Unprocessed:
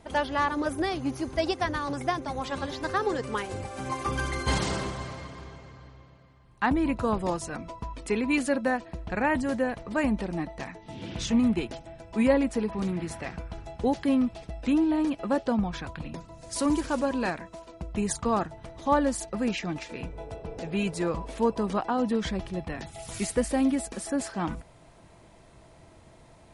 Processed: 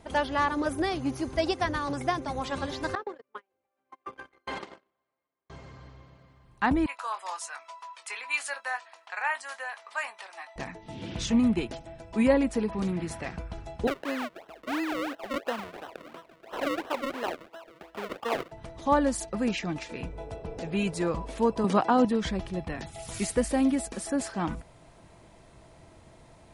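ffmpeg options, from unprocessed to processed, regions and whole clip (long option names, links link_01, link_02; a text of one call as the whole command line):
ffmpeg -i in.wav -filter_complex "[0:a]asettb=1/sr,asplit=3[link_01][link_02][link_03];[link_01]atrim=end=2.954[link_04];[link_02]atrim=start=2.95:end=5.5,asetpts=PTS-STARTPTS,afade=type=in:duration=0.004:curve=qsin,afade=type=out:start_time=2.546:duration=0.004:curve=qsin,agate=range=-43dB:threshold=-27dB:ratio=16:release=100:detection=peak,acrossover=split=260 3400:gain=0.0891 1 0.141[link_05][link_06][link_07];[link_05][link_06][link_07]amix=inputs=3:normalize=0,acompressor=threshold=-32dB:ratio=3:attack=3.2:release=140:knee=1:detection=peak[link_08];[link_03]atrim=start=5.496[link_09];[link_04][link_08]acrossfade=duration=0.004:curve1=hsin:curve2=qsin[link_10];[link_10][link_09]acrossfade=duration=0.004:curve1=qsin:curve2=hsin,asettb=1/sr,asplit=3[link_11][link_12][link_13];[link_11]atrim=end=6.864[link_14];[link_12]atrim=start=6.86:end=10.56,asetpts=PTS-STARTPTS,afade=type=in:duration=0.004:curve=qsin,afade=type=out:start_time=3.696:duration=0.004:curve=qsin,highpass=frequency=890:width=0.5412,highpass=frequency=890:width=1.3066,asplit=2[link_15][link_16];[link_16]adelay=21,volume=-9.5dB[link_17];[link_15][link_17]amix=inputs=2:normalize=0,atrim=end_sample=163170[link_18];[link_13]atrim=start=10.556[link_19];[link_14][link_18]acrossfade=duration=0.004:curve1=hsin:curve2=qsin[link_20];[link_20][link_19]acrossfade=duration=0.004:curve1=qsin:curve2=hsin,asettb=1/sr,asplit=3[link_21][link_22][link_23];[link_21]atrim=end=13.874[link_24];[link_22]atrim=start=13.87:end=18.52,asetpts=PTS-STARTPTS,afade=type=in:duration=0.004:curve=qsin,afade=type=out:start_time=4.646:duration=0.004:curve=qsin,highpass=frequency=260:poles=1,acrusher=samples=37:mix=1:aa=0.000001:lfo=1:lforange=37:lforate=2.9,acrossover=split=330 3500:gain=0.126 1 0.224[link_25][link_26][link_27];[link_25][link_26][link_27]amix=inputs=3:normalize=0[link_28];[link_23]atrim=start=18.516[link_29];[link_24][link_28]acrossfade=duration=0.004:curve1=hsin:curve2=qsin[link_30];[link_30][link_29]acrossfade=duration=0.004:curve1=qsin:curve2=hsin,asettb=1/sr,asplit=3[link_31][link_32][link_33];[link_31]atrim=end=21.644[link_34];[link_32]atrim=start=21.64:end=22.05,asetpts=PTS-STARTPTS,afade=type=in:duration=0.004:curve=qsin,afade=type=out:start_time=0.406:duration=0.004:curve=qsin,highpass=frequency=110:width=0.5412,highpass=frequency=110:width=1.3066,acontrast=24[link_35];[link_33]atrim=start=22.046[link_36];[link_34][link_35]acrossfade=duration=0.004:curve1=hsin:curve2=qsin[link_37];[link_37][link_36]acrossfade=duration=0.004:curve1=qsin:curve2=hsin" out.wav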